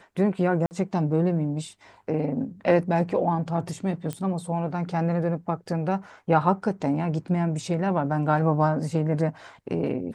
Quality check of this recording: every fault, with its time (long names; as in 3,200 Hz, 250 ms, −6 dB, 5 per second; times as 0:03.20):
0:00.66–0:00.71: drop-out 49 ms
0:04.13: click −18 dBFS